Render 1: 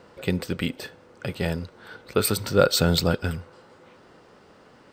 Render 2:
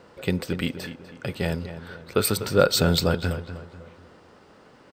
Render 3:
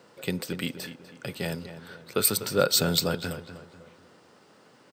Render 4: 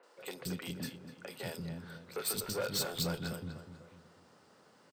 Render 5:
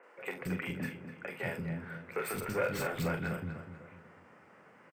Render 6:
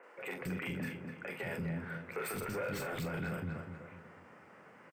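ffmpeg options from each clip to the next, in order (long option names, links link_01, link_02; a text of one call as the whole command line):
ffmpeg -i in.wav -filter_complex "[0:a]asplit=2[link_01][link_02];[link_02]adelay=247,lowpass=frequency=2700:poles=1,volume=-11dB,asplit=2[link_03][link_04];[link_04]adelay=247,lowpass=frequency=2700:poles=1,volume=0.41,asplit=2[link_05][link_06];[link_06]adelay=247,lowpass=frequency=2700:poles=1,volume=0.41,asplit=2[link_07][link_08];[link_08]adelay=247,lowpass=frequency=2700:poles=1,volume=0.41[link_09];[link_01][link_03][link_05][link_07][link_09]amix=inputs=5:normalize=0" out.wav
ffmpeg -i in.wav -af "highpass=frequency=110:width=0.5412,highpass=frequency=110:width=1.3066,highshelf=frequency=4400:gain=10,volume=-5dB" out.wav
ffmpeg -i in.wav -filter_complex "[0:a]asoftclip=type=tanh:threshold=-24dB,acrossover=split=330|2600[link_01][link_02][link_03];[link_03]adelay=30[link_04];[link_01]adelay=180[link_05];[link_05][link_02][link_04]amix=inputs=3:normalize=0,volume=-5dB" out.wav
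ffmpeg -i in.wav -filter_complex "[0:a]highshelf=frequency=3000:width_type=q:width=3:gain=-10.5,asplit=2[link_01][link_02];[link_02]adelay=43,volume=-8.5dB[link_03];[link_01][link_03]amix=inputs=2:normalize=0,volume=3dB" out.wav
ffmpeg -i in.wav -af "alimiter=level_in=8dB:limit=-24dB:level=0:latency=1:release=19,volume=-8dB,volume=1.5dB" out.wav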